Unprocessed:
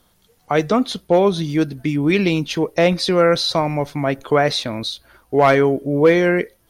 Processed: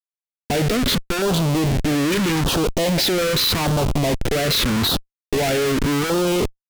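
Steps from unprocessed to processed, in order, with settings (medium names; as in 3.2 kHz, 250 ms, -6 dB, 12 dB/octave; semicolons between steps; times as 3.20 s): Schmitt trigger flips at -32.5 dBFS; LFO notch saw down 0.82 Hz 530–2300 Hz; loudspeaker Doppler distortion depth 0.16 ms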